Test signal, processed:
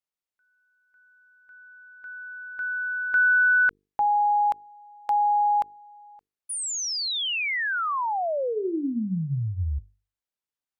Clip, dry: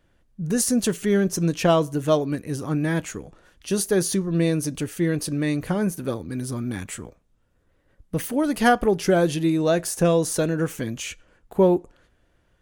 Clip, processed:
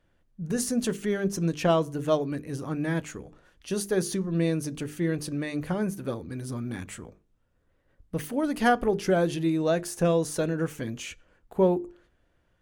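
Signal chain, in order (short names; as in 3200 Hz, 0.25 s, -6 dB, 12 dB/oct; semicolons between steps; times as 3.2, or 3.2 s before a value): high shelf 5300 Hz -5.5 dB; notches 50/100/150/200/250/300/350/400/450 Hz; gain -4 dB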